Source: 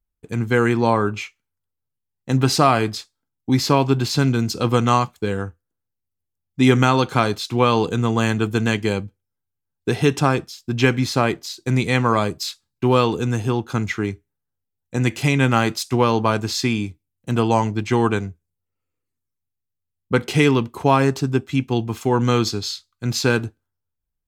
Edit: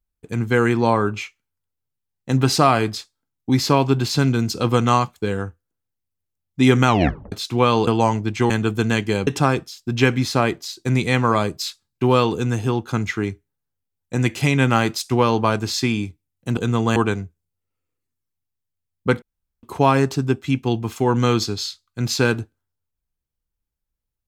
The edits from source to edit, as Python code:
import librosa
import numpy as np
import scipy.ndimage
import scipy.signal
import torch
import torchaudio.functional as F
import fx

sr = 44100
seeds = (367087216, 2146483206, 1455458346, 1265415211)

y = fx.edit(x, sr, fx.tape_stop(start_s=6.87, length_s=0.45),
    fx.swap(start_s=7.87, length_s=0.39, other_s=17.38, other_length_s=0.63),
    fx.cut(start_s=9.03, length_s=1.05),
    fx.room_tone_fill(start_s=20.27, length_s=0.41), tone=tone)